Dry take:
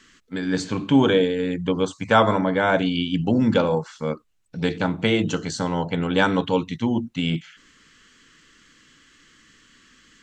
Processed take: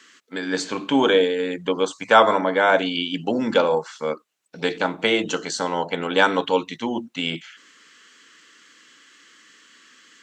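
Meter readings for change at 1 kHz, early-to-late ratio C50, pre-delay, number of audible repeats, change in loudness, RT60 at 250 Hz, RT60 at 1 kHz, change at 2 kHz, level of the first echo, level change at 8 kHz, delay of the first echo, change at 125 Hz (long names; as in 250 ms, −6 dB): +3.5 dB, no reverb audible, no reverb audible, no echo audible, +0.5 dB, no reverb audible, no reverb audible, +3.5 dB, no echo audible, +3.5 dB, no echo audible, −12.0 dB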